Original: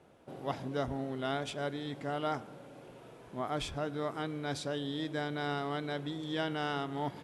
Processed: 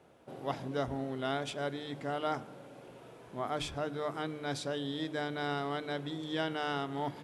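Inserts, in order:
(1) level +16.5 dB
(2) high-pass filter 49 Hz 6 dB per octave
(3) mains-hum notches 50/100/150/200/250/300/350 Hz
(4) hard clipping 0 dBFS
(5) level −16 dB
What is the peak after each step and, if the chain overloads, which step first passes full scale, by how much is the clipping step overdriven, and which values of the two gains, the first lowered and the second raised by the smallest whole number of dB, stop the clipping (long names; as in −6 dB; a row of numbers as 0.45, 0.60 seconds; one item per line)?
−3.5, −3.5, −4.0, −4.0, −20.0 dBFS
no step passes full scale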